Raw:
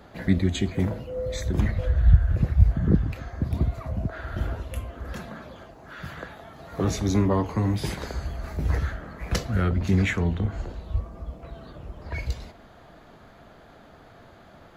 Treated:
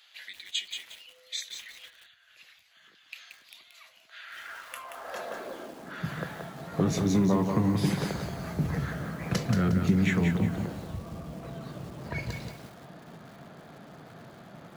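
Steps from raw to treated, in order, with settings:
downward compressor 2.5 to 1, threshold −25 dBFS, peak gain reduction 11 dB
high-pass filter sweep 3,000 Hz → 150 Hz, 0:04.15–0:06.07
feedback echo at a low word length 179 ms, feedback 35%, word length 8 bits, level −5.5 dB

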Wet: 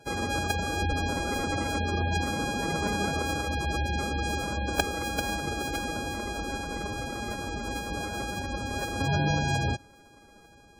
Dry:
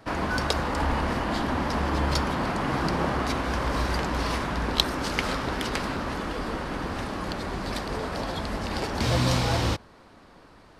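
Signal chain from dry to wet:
samples sorted by size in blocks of 64 samples
phase-vocoder pitch shift with formants kept +3 semitones
gate on every frequency bin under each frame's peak −20 dB strong
level −2 dB

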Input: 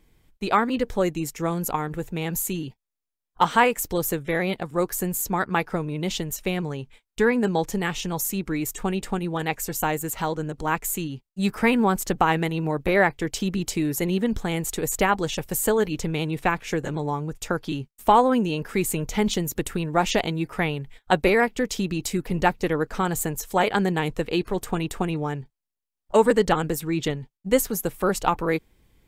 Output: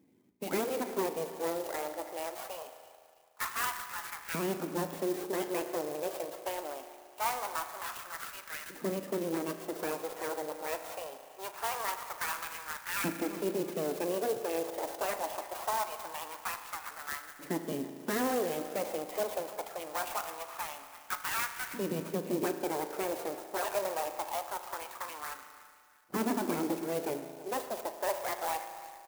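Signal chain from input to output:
full-wave rectification
repeating echo 330 ms, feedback 39%, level −21 dB
soft clipping −15.5 dBFS, distortion −13 dB
auto-filter high-pass saw up 0.23 Hz 260–1,600 Hz
spectral peaks only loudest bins 64
bass and treble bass +13 dB, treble +3 dB
spring reverb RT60 2 s, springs 36 ms, chirp 20 ms, DRR 8 dB
converter with an unsteady clock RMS 0.064 ms
level −7 dB

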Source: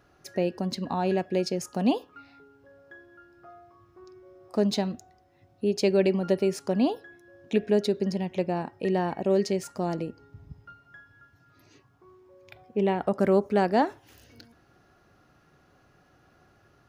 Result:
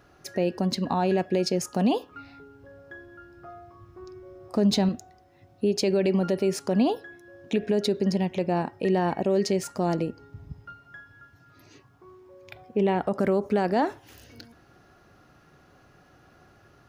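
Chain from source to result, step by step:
0:02.11–0:04.89: low-shelf EQ 150 Hz +10 dB
brickwall limiter −19 dBFS, peak gain reduction 8 dB
level +4.5 dB

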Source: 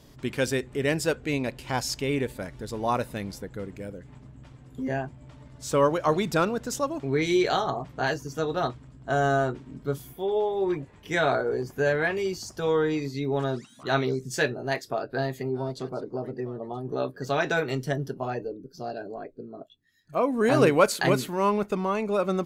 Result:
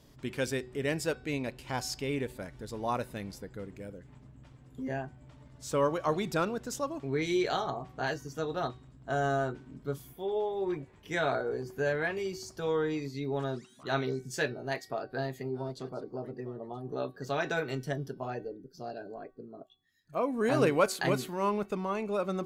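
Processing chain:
hum removal 376.9 Hz, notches 14
level −6 dB

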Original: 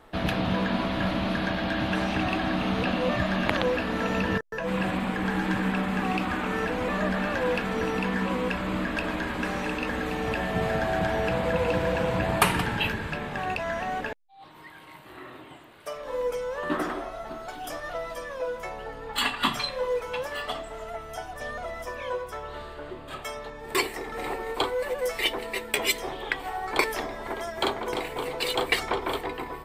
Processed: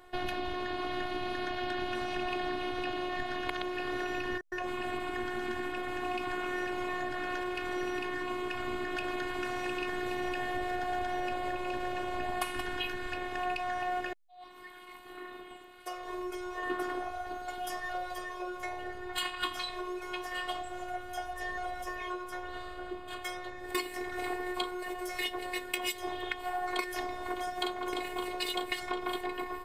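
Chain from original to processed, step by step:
downward compressor, threshold −28 dBFS, peak gain reduction 12.5 dB
phases set to zero 361 Hz

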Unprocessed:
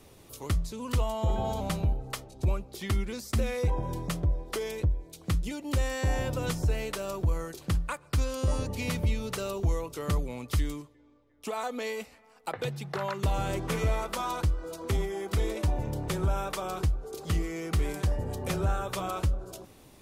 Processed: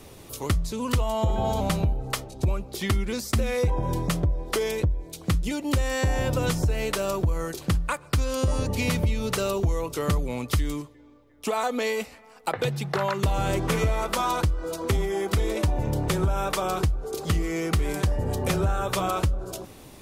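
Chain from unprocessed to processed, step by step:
downward compressor, threshold −28 dBFS, peak gain reduction 7 dB
level +8 dB

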